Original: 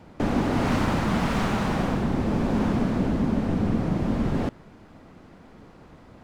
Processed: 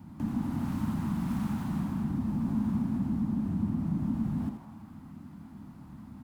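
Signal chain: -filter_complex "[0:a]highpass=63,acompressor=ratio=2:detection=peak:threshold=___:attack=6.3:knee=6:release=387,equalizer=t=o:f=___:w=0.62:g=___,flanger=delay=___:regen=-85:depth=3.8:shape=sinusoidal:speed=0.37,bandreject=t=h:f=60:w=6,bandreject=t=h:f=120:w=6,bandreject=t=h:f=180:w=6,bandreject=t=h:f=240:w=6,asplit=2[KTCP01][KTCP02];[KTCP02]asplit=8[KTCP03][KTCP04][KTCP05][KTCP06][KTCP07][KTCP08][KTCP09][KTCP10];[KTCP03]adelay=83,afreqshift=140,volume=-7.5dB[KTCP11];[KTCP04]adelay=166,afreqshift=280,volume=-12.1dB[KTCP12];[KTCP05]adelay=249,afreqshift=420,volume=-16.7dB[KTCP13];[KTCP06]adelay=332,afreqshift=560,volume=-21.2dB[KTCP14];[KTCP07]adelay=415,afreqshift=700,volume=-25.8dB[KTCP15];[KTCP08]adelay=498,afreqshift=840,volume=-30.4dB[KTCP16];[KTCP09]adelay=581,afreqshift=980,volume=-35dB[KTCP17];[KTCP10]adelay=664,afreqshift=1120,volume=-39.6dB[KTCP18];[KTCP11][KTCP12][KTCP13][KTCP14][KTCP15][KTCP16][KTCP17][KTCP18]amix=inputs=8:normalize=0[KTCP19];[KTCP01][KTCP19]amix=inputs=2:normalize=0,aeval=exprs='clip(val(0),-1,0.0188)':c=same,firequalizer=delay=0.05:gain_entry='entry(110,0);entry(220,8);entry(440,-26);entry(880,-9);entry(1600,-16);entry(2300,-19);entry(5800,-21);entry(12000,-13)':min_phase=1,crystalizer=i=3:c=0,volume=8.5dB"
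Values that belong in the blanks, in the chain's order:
-38dB, 210, -4.5, 8.3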